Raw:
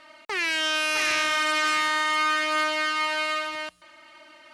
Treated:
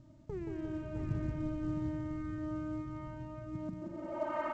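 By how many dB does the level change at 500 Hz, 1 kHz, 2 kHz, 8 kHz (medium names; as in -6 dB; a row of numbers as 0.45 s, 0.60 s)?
-7.5 dB, -18.5 dB, -29.5 dB, under -35 dB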